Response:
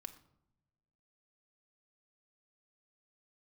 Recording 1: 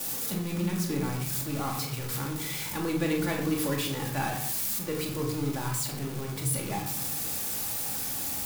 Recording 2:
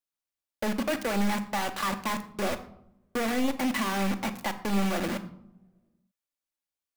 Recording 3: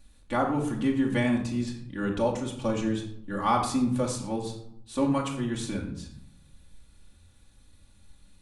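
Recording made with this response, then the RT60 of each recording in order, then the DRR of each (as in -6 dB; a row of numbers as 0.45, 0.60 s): 2; 0.75, 0.85, 0.75 s; -10.0, 6.5, -2.5 dB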